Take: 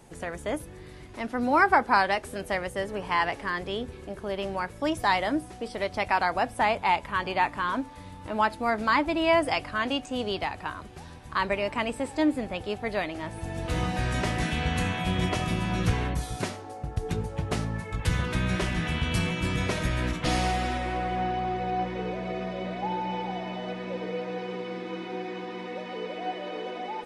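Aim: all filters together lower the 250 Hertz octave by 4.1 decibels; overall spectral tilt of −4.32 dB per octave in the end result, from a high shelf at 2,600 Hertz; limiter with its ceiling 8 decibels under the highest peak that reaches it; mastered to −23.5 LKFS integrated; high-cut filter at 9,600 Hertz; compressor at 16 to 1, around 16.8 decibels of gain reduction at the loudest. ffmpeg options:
ffmpeg -i in.wav -af "lowpass=9600,equalizer=frequency=250:width_type=o:gain=-6,highshelf=frequency=2600:gain=6,acompressor=threshold=-31dB:ratio=16,volume=13.5dB,alimiter=limit=-12.5dB:level=0:latency=1" out.wav

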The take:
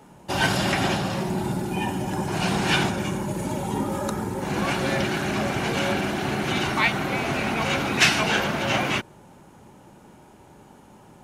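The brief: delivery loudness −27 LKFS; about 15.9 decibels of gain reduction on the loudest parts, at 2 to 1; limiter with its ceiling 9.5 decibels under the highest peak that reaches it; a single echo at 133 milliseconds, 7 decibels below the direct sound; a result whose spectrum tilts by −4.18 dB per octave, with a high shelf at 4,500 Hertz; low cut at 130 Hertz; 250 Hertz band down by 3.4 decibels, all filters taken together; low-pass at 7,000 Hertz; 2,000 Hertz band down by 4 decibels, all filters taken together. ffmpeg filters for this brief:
ffmpeg -i in.wav -af "highpass=130,lowpass=7000,equalizer=frequency=250:width_type=o:gain=-4,equalizer=frequency=2000:width_type=o:gain=-6.5,highshelf=frequency=4500:gain=5.5,acompressor=threshold=-45dB:ratio=2,alimiter=level_in=6.5dB:limit=-24dB:level=0:latency=1,volume=-6.5dB,aecho=1:1:133:0.447,volume=12dB" out.wav

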